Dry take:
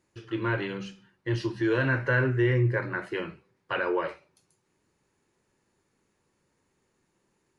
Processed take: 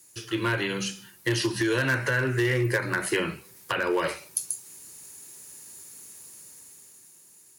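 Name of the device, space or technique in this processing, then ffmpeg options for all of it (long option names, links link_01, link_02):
FM broadcast chain: -filter_complex "[0:a]highpass=43,dynaudnorm=framelen=200:gausssize=11:maxgain=9dB,acrossover=split=290|2800[link_01][link_02][link_03];[link_01]acompressor=threshold=-30dB:ratio=4[link_04];[link_02]acompressor=threshold=-26dB:ratio=4[link_05];[link_03]acompressor=threshold=-51dB:ratio=4[link_06];[link_04][link_05][link_06]amix=inputs=3:normalize=0,aemphasis=mode=production:type=75fm,alimiter=limit=-18dB:level=0:latency=1:release=392,asoftclip=type=hard:threshold=-21dB,lowpass=frequency=15000:width=0.5412,lowpass=frequency=15000:width=1.3066,aemphasis=mode=production:type=75fm,volume=3.5dB"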